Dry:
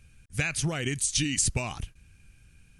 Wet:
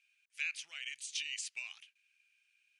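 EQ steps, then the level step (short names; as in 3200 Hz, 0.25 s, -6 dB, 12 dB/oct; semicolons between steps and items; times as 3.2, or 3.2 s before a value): band-pass 2500 Hz, Q 2.3; air absorption 51 m; differentiator; +4.5 dB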